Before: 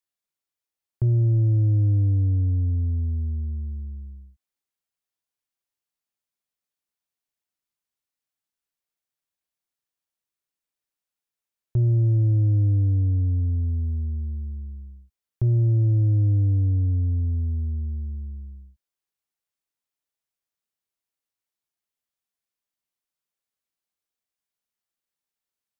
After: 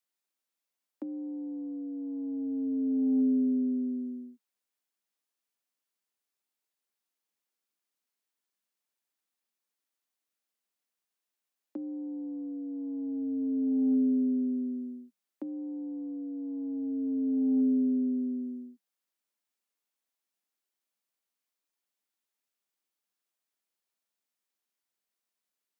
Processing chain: frequency shift +180 Hz; negative-ratio compressor -25 dBFS, ratio -0.5; gain -4 dB

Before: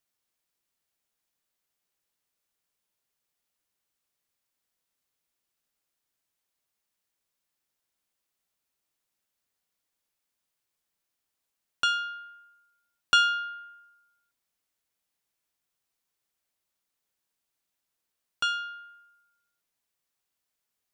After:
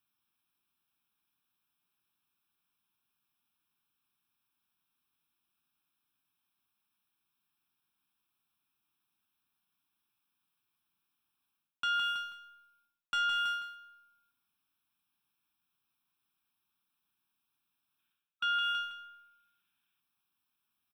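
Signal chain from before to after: low shelf 70 Hz -9 dB; fixed phaser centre 2000 Hz, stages 6; sample leveller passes 1; on a send: feedback echo 0.162 s, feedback 28%, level -14.5 dB; on the sum: spectral gain 17.99–20, 1300–3800 Hz +6 dB; reverse; compressor 16:1, threshold -35 dBFS, peak gain reduction 21 dB; reverse; reverb RT60 0.50 s, pre-delay 3 ms, DRR 16 dB; gain +3.5 dB

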